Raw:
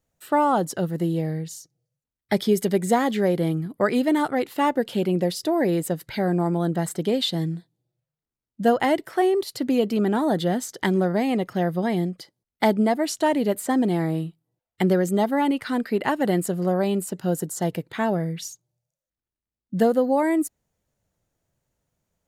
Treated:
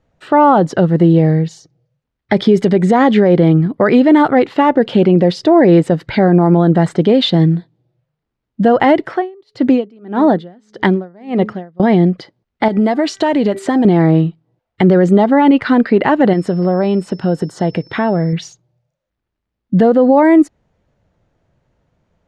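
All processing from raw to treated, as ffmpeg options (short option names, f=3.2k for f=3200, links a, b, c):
-filter_complex "[0:a]asettb=1/sr,asplit=3[a][b][c];[a]atrim=end=9.094[d];[b]atrim=start=9.09:end=11.8,asetpts=PTS-STARTPTS,afade=t=in:d=0.004:c=qsin,afade=t=out:st=2.706:d=0.004:c=qsin,bandreject=f=212.5:t=h:w=4,bandreject=f=425:t=h:w=4,aeval=exprs='val(0)*pow(10,-34*(0.5-0.5*cos(2*PI*1.7*n/s))/20)':c=same[e];[c]atrim=start=11.796[f];[d][e]acrossfade=d=0.004:c1=hsin:c2=qsin[g];[g][f]acrossfade=d=0.004:c1=qsin:c2=hsin,asettb=1/sr,asplit=3[h][i][j];[h]atrim=end=12.684[k];[i]atrim=start=12.68:end=13.85,asetpts=PTS-STARTPTS,afade=t=in:d=0.004:c=qsin,afade=t=out:st=1.166:d=0.004:c=qsin,highshelf=f=2.7k:g=8.5,bandreject=f=389.5:t=h:w=4,bandreject=f=779:t=h:w=4,bandreject=f=1.1685k:t=h:w=4,bandreject=f=1.558k:t=h:w=4,bandreject=f=1.9475k:t=h:w=4,bandreject=f=2.337k:t=h:w=4,acompressor=threshold=-24dB:ratio=10:attack=3.2:release=140:knee=1:detection=peak[l];[j]atrim=start=13.846[m];[k][l]acrossfade=d=0.004:c1=hsin:c2=qsin[n];[n][m]acrossfade=d=0.004:c1=qsin:c2=hsin,asettb=1/sr,asplit=3[o][p][q];[o]atrim=end=16.334[r];[p]atrim=start=16.33:end=18.33,asetpts=PTS-STARTPTS,afade=t=in:d=0.004:c=qsin,afade=t=out:st=1.996:d=0.004:c=qsin,bandreject=f=7.3k:w=11,acompressor=threshold=-30dB:ratio=2:attack=3.2:release=140:knee=1:detection=peak,aeval=exprs='val(0)+0.00398*sin(2*PI*5300*n/s)':c=same[s];[q]atrim=start=18.326[t];[r][s]acrossfade=d=0.004:c1=hsin:c2=qsin[u];[u][t]acrossfade=d=0.004:c1=qsin:c2=hsin,lowpass=5.1k,aemphasis=mode=reproduction:type=75fm,alimiter=level_in=15.5dB:limit=-1dB:release=50:level=0:latency=1,volume=-1dB"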